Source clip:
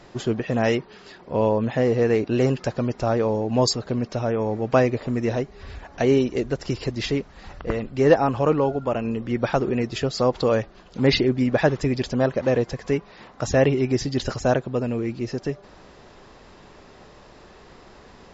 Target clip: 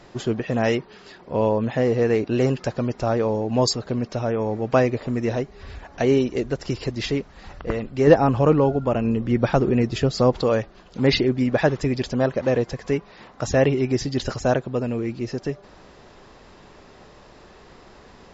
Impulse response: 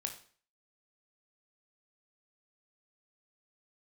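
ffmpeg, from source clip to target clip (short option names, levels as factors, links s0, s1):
-filter_complex "[0:a]asettb=1/sr,asplit=3[s0][s1][s2];[s0]atrim=end=8.074[s3];[s1]atrim=start=8.07:end=10.41,asetpts=PTS-STARTPTS,afade=t=in:d=0.004:c=qsin,afade=t=out:st=2.336:d=0.004:c=qsin,lowshelf=f=320:g=7[s4];[s2]atrim=start=10.406[s5];[s3][s4]acrossfade=d=0.004:c1=hsin:c2=qsin[s6];[s6][s5]acrossfade=d=0.004:c1=qsin:c2=hsin"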